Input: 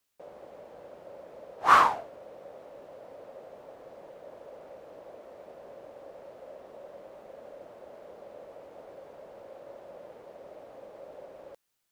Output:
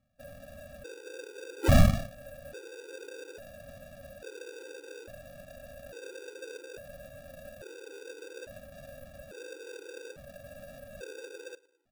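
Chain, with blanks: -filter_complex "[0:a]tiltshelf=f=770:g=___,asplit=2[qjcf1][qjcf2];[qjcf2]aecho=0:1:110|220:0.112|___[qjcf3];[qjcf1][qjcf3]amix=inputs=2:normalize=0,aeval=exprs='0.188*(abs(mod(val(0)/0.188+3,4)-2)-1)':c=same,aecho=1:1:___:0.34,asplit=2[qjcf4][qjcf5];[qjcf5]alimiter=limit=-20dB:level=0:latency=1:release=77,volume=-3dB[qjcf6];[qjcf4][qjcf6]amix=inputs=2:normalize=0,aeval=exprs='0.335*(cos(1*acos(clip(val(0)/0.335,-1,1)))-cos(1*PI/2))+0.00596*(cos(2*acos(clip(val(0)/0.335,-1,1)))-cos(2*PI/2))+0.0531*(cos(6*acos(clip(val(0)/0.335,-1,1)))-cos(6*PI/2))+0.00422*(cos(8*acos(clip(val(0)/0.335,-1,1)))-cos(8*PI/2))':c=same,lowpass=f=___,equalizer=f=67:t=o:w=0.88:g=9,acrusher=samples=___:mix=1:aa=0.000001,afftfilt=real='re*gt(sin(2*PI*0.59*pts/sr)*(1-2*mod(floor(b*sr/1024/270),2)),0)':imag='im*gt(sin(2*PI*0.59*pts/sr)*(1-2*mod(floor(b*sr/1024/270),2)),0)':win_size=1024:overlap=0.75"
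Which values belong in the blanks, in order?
-8, 0.0281, 1.9, 5900, 42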